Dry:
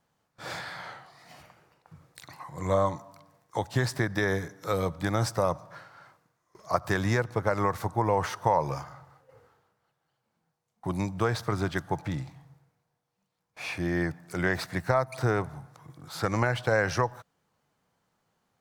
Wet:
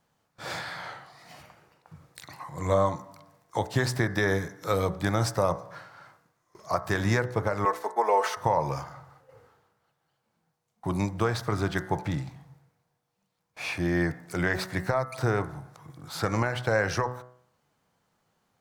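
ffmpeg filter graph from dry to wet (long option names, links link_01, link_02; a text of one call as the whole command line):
ffmpeg -i in.wav -filter_complex "[0:a]asettb=1/sr,asplit=3[link_01][link_02][link_03];[link_01]atrim=end=7.654[link_04];[link_02]atrim=start=7.65:end=8.37,asetpts=PTS-STARTPTS,afade=type=in:duration=0.004:curve=qsin,afade=type=out:start_time=0.716:duration=0.004:curve=qsin,agate=range=-33dB:threshold=-34dB:ratio=3:release=100:detection=peak,highpass=frequency=370:width=0.5412,highpass=frequency=370:width=1.3066,aecho=1:1:4.6:0.74,atrim=end_sample=31752[link_05];[link_03]atrim=start=8.366[link_06];[link_04][link_05]acrossfade=duration=0.004:curve1=hsin:curve2=qsin[link_07];[link_07][link_06]acrossfade=duration=0.004:curve1=qsin:curve2=hsin,bandreject=frequency=62.4:width_type=h:width=4,bandreject=frequency=124.8:width_type=h:width=4,bandreject=frequency=187.2:width_type=h:width=4,bandreject=frequency=249.6:width_type=h:width=4,bandreject=frequency=312:width_type=h:width=4,bandreject=frequency=374.4:width_type=h:width=4,bandreject=frequency=436.8:width_type=h:width=4,bandreject=frequency=499.2:width_type=h:width=4,bandreject=frequency=561.6:width_type=h:width=4,bandreject=frequency=624:width_type=h:width=4,bandreject=frequency=686.4:width_type=h:width=4,bandreject=frequency=748.8:width_type=h:width=4,bandreject=frequency=811.2:width_type=h:width=4,bandreject=frequency=873.6:width_type=h:width=4,bandreject=frequency=936:width_type=h:width=4,bandreject=frequency=998.4:width_type=h:width=4,bandreject=frequency=1060.8:width_type=h:width=4,bandreject=frequency=1123.2:width_type=h:width=4,bandreject=frequency=1185.6:width_type=h:width=4,bandreject=frequency=1248:width_type=h:width=4,bandreject=frequency=1310.4:width_type=h:width=4,bandreject=frequency=1372.8:width_type=h:width=4,bandreject=frequency=1435.2:width_type=h:width=4,bandreject=frequency=1497.6:width_type=h:width=4,bandreject=frequency=1560:width_type=h:width=4,bandreject=frequency=1622.4:width_type=h:width=4,bandreject=frequency=1684.8:width_type=h:width=4,bandreject=frequency=1747.2:width_type=h:width=4,bandreject=frequency=1809.6:width_type=h:width=4,bandreject=frequency=1872:width_type=h:width=4,bandreject=frequency=1934.4:width_type=h:width=4,bandreject=frequency=1996.8:width_type=h:width=4,bandreject=frequency=2059.2:width_type=h:width=4,bandreject=frequency=2121.6:width_type=h:width=4,alimiter=limit=-14.5dB:level=0:latency=1:release=427,volume=2.5dB" out.wav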